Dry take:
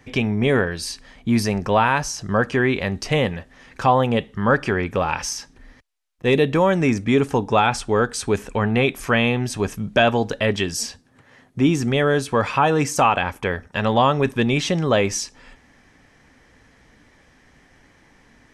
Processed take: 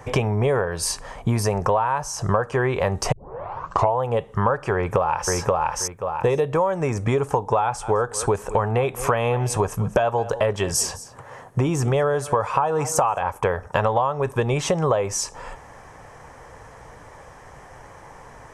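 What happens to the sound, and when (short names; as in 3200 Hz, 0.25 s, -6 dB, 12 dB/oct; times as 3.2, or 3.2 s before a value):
3.12 tape start 0.89 s
4.74–5.34 echo throw 0.53 s, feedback 15%, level -3.5 dB
7.62–13.28 echo 0.21 s -21.5 dB
whole clip: graphic EQ 125/250/500/1000/2000/4000/8000 Hz +5/-12/+7/+10/-5/-9/+4 dB; compressor 12:1, threshold -26 dBFS; gain +8.5 dB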